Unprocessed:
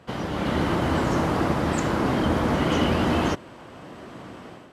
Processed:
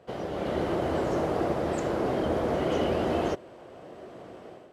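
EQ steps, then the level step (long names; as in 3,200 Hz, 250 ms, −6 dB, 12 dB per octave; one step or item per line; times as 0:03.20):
flat-topped bell 510 Hz +9 dB 1.3 octaves
−9.0 dB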